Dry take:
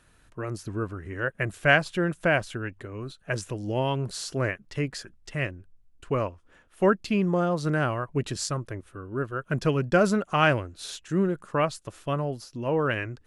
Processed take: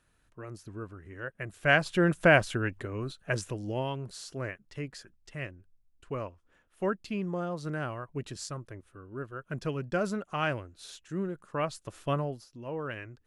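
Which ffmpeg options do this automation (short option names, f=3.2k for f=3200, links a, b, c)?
-af "volume=10.5dB,afade=t=in:st=1.52:d=0.6:silence=0.237137,afade=t=out:st=2.75:d=1.25:silence=0.266073,afade=t=in:st=11.48:d=0.63:silence=0.398107,afade=t=out:st=12.11:d=0.35:silence=0.316228"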